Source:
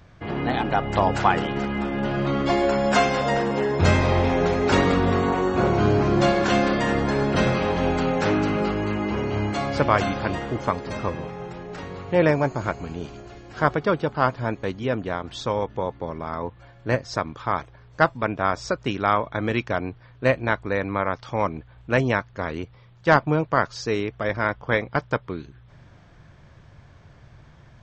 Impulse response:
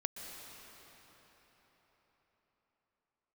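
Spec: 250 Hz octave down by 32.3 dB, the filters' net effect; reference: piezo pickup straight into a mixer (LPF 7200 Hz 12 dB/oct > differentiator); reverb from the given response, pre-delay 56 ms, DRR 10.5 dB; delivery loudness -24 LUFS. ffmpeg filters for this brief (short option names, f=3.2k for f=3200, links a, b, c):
-filter_complex "[0:a]equalizer=f=250:t=o:g=-5.5,asplit=2[a][b];[1:a]atrim=start_sample=2205,adelay=56[c];[b][c]afir=irnorm=-1:irlink=0,volume=-11dB[d];[a][d]amix=inputs=2:normalize=0,lowpass=7.2k,aderivative,volume=15.5dB"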